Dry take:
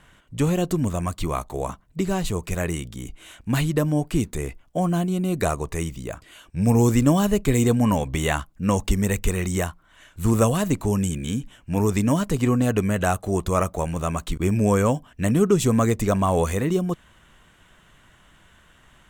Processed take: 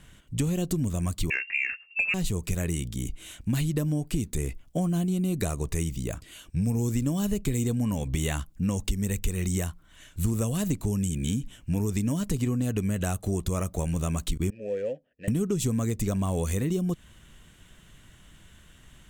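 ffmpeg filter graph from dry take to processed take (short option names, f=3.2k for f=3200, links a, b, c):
-filter_complex "[0:a]asettb=1/sr,asplit=3[a][b][c];[a]atrim=end=1.304[d];[b]atrim=start=1.3:end=2.14,asetpts=PTS-STARTPTS,afade=t=in:d=0.004:c=qsin,afade=t=out:st=0.836:d=0.004:c=qsin,lowpass=f=2.4k:t=q:w=0.5098,lowpass=f=2.4k:t=q:w=0.6013,lowpass=f=2.4k:t=q:w=0.9,lowpass=f=2.4k:t=q:w=2.563,afreqshift=-2800,acontrast=22[e];[c]atrim=start=2.136[f];[d][e]acrossfade=d=0.004:c1=hsin:c2=qsin[g];[g][f]acrossfade=d=0.004:c1=qsin:c2=hsin,asettb=1/sr,asplit=3[h][i][j];[h]atrim=end=14.504[k];[i]atrim=start=14.5:end=15.28,asetpts=PTS-STARTPTS,afade=t=in:d=0.004:c=qsin,afade=t=out:st=0.776:d=0.004:c=qsin,adynamicsmooth=sensitivity=8:basefreq=1.3k,asplit=3[l][m][n];[l]bandpass=f=530:t=q:w=8,volume=0dB[o];[m]bandpass=f=1.84k:t=q:w=8,volume=-6dB[p];[n]bandpass=f=2.48k:t=q:w=8,volume=-9dB[q];[o][p][q]amix=inputs=3:normalize=0[r];[j]atrim=start=15.276[s];[k][r]acrossfade=d=0.004:c1=hsin:c2=qsin[t];[t][s]acrossfade=d=0.004:c1=qsin:c2=hsin,equalizer=f=1k:w=0.49:g=-11.5,acompressor=threshold=-28dB:ratio=6,volume=4.5dB"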